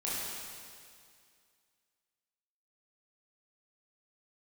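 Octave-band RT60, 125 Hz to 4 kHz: 2.2, 2.2, 2.2, 2.2, 2.2, 2.2 seconds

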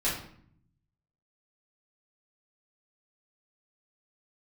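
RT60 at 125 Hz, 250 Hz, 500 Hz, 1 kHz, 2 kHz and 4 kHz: 1.3, 1.0, 0.60, 0.60, 0.55, 0.45 seconds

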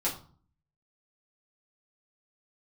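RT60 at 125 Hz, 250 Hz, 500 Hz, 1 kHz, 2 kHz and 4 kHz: 0.75, 0.65, 0.45, 0.45, 0.30, 0.30 seconds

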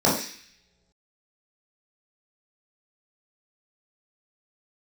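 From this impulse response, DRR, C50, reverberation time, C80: −7.0 dB, 4.0 dB, non-exponential decay, 8.5 dB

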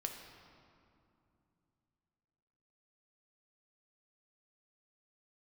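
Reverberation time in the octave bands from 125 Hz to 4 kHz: 3.7, 3.5, 2.8, 2.6, 1.9, 1.5 seconds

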